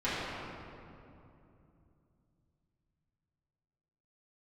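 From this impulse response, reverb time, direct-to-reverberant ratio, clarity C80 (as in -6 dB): 2.8 s, -13.5 dB, -1.5 dB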